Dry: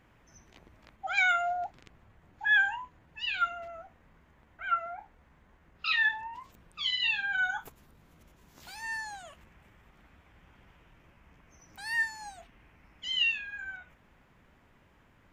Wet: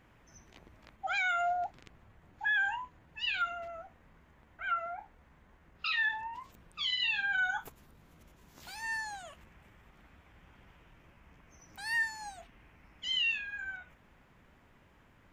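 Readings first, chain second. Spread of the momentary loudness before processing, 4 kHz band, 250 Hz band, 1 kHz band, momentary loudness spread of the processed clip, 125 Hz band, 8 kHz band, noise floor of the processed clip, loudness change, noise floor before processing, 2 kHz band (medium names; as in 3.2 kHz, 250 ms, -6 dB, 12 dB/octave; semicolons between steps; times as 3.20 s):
21 LU, -2.0 dB, no reading, -2.0 dB, 18 LU, 0.0 dB, -1.0 dB, -63 dBFS, -3.0 dB, -63 dBFS, -3.5 dB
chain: peak limiter -24 dBFS, peak gain reduction 8 dB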